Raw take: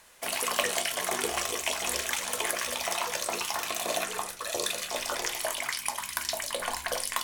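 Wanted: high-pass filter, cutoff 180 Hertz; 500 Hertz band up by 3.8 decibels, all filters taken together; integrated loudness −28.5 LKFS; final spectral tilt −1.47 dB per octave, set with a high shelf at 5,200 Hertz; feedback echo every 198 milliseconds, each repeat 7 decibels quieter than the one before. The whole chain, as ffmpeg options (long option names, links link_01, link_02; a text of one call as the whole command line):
ffmpeg -i in.wav -af "highpass=180,equalizer=frequency=500:width_type=o:gain=5,highshelf=frequency=5200:gain=-6,aecho=1:1:198|396|594|792|990:0.447|0.201|0.0905|0.0407|0.0183,volume=1.5dB" out.wav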